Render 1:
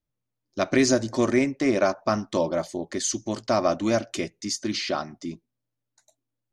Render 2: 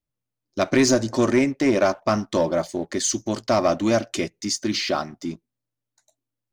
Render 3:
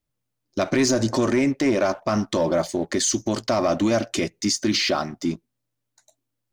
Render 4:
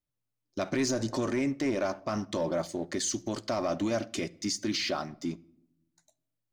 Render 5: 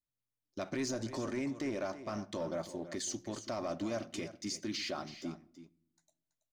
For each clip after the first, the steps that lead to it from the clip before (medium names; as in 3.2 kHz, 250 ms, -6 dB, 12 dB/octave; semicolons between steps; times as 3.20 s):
waveshaping leveller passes 1
peak limiter -18 dBFS, peak gain reduction 9 dB; trim +5 dB
simulated room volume 2000 m³, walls furnished, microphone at 0.33 m; trim -9 dB
delay 329 ms -13 dB; trim -7.5 dB